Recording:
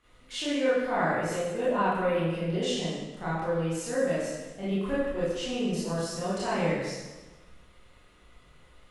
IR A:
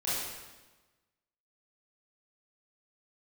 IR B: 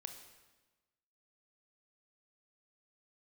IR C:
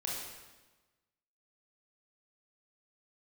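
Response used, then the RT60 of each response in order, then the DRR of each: A; 1.2, 1.2, 1.2 seconds; −11.0, 5.5, −4.0 decibels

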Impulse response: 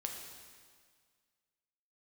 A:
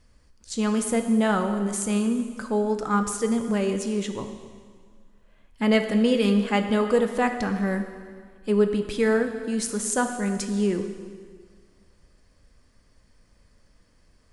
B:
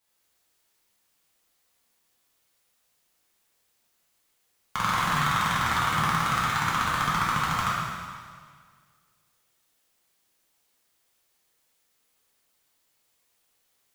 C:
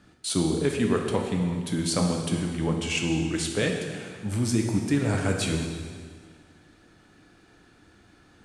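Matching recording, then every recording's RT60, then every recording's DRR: C; 1.8, 1.8, 1.8 seconds; 6.5, −8.0, 1.5 decibels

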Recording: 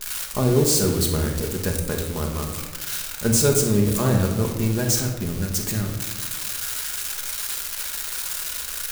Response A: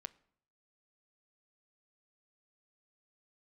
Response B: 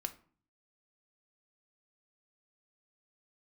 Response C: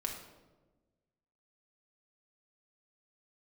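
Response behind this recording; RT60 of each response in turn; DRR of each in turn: C; 0.65, 0.45, 1.2 seconds; 13.0, 7.0, 0.5 decibels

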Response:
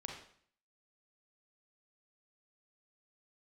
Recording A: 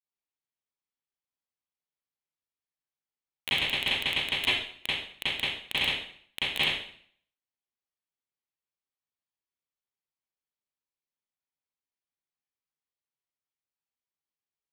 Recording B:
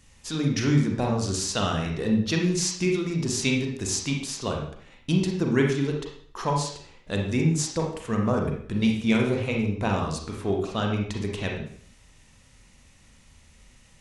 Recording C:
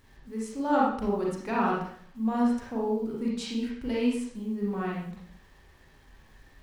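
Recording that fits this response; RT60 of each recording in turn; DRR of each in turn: B; 0.55, 0.55, 0.55 seconds; −14.5, 0.5, −5.0 decibels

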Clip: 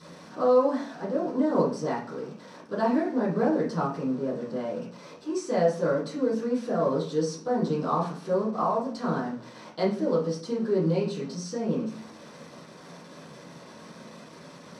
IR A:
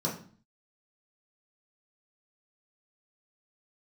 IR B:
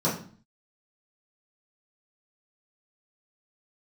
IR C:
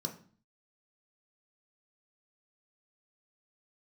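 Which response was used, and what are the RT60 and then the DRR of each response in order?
B; 0.45, 0.45, 0.45 seconds; −5.0, −10.0, 2.5 decibels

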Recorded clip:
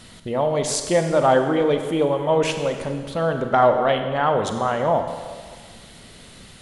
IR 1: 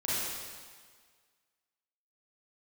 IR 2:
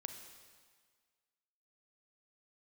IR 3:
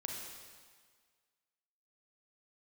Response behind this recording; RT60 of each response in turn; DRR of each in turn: 2; 1.7, 1.7, 1.7 seconds; −10.0, 5.5, −0.5 decibels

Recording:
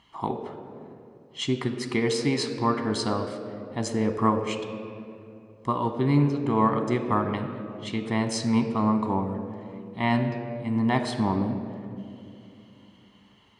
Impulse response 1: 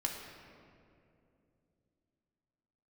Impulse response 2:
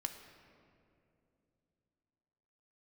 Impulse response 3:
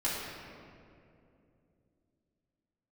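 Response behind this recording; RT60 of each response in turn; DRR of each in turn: 2; 2.7, 2.7, 2.7 seconds; −0.5, 5.0, −9.5 decibels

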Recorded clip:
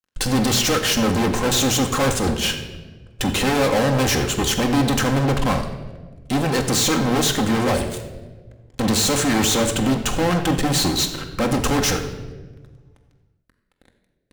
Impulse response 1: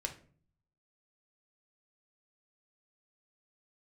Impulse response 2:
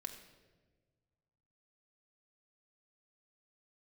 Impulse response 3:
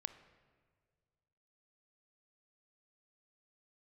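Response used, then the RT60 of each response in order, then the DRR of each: 2; 0.45, 1.4, 1.8 seconds; 2.5, 4.0, 11.0 decibels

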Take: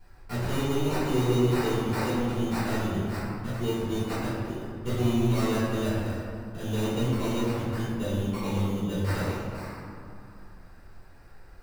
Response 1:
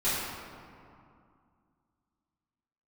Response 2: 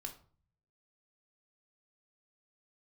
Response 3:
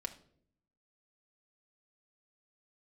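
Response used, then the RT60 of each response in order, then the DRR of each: 1; 2.4, 0.45, 0.60 seconds; −14.0, 2.0, 2.5 decibels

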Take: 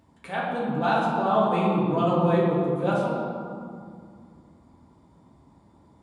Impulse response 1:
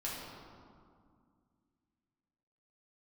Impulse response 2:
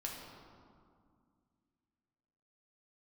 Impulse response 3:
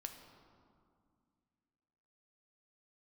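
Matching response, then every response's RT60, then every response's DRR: 1; 2.1, 2.1, 2.2 seconds; −6.5, −2.0, 4.5 decibels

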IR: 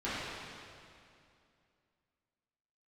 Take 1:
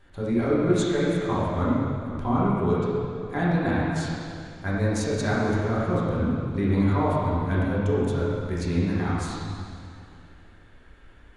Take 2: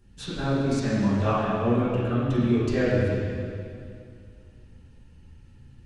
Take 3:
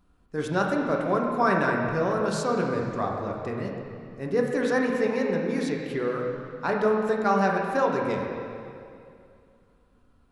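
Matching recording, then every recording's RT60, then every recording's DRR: 2; 2.5, 2.5, 2.5 seconds; −8.5, −13.5, −1.0 decibels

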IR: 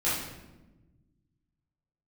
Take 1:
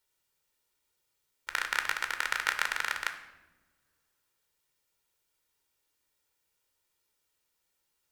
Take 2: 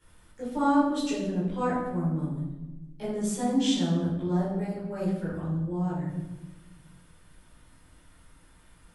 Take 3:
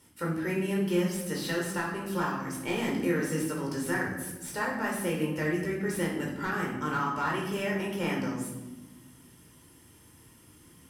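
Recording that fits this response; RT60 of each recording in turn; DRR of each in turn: 2; non-exponential decay, 1.1 s, 1.1 s; 6.5, −11.0, −3.0 decibels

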